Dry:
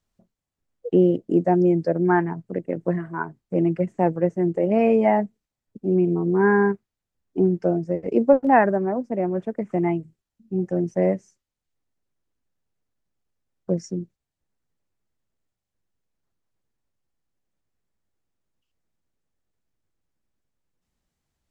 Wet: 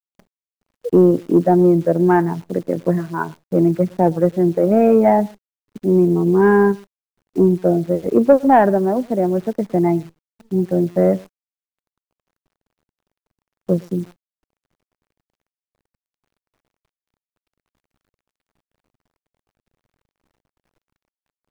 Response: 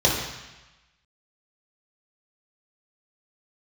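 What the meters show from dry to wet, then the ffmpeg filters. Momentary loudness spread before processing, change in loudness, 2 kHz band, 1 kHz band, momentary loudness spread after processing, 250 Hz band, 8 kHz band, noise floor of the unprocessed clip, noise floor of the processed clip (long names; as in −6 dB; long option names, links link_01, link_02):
13 LU, +5.5 dB, +0.5 dB, +4.5 dB, 12 LU, +5.5 dB, can't be measured, below −85 dBFS, below −85 dBFS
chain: -filter_complex "[0:a]acontrast=62,lowpass=1500,asplit=2[link_01][link_02];[link_02]adelay=110.8,volume=-25dB,highshelf=frequency=4000:gain=-2.49[link_03];[link_01][link_03]amix=inputs=2:normalize=0,acrusher=bits=8:dc=4:mix=0:aa=0.000001"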